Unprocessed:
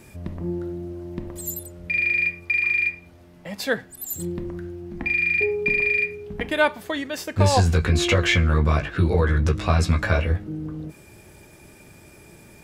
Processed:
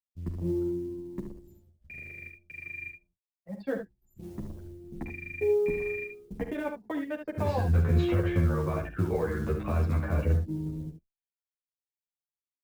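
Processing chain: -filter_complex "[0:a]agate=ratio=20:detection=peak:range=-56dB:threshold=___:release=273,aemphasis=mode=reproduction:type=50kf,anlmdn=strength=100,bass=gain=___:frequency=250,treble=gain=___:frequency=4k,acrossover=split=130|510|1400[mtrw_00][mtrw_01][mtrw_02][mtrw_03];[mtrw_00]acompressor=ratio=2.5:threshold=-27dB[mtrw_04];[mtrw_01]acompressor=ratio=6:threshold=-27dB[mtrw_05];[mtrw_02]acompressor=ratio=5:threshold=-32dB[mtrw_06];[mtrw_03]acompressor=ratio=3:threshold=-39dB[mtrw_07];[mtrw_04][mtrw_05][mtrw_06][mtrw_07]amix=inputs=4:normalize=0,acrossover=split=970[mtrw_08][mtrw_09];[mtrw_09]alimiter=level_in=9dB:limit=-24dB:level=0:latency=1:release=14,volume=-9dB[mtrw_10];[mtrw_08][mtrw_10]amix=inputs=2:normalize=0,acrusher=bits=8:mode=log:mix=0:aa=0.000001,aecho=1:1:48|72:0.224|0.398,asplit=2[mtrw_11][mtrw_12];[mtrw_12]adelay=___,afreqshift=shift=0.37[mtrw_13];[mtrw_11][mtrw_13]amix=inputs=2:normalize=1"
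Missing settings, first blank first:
-38dB, 0, -15, 9.3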